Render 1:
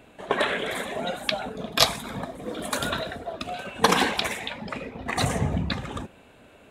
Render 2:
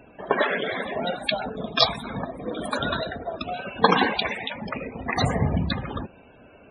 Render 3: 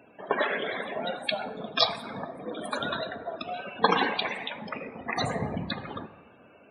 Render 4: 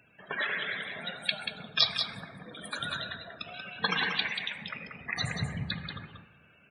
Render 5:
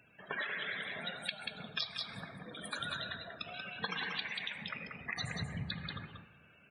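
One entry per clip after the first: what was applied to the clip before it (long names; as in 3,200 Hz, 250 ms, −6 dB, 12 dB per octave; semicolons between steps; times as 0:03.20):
spectral peaks only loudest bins 64; level +2.5 dB
high-pass filter 120 Hz 12 dB per octave; low-shelf EQ 220 Hz −5 dB; dense smooth reverb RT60 1.7 s, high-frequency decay 0.4×, DRR 12.5 dB; level −4 dB
flat-topped bell 500 Hz −14 dB 2.6 octaves; single-tap delay 185 ms −6.5 dB
downward compressor 6 to 1, threshold −33 dBFS, peak gain reduction 13.5 dB; level −2 dB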